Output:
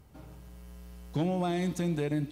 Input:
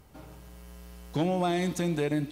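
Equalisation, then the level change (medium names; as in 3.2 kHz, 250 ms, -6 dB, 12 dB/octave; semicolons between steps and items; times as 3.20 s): peaking EQ 97 Hz +6 dB 2.9 oct; -5.0 dB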